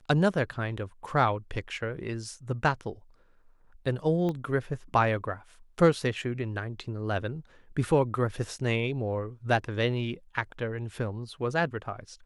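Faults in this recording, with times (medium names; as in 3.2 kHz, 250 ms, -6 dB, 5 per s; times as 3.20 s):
4.29 s: pop -21 dBFS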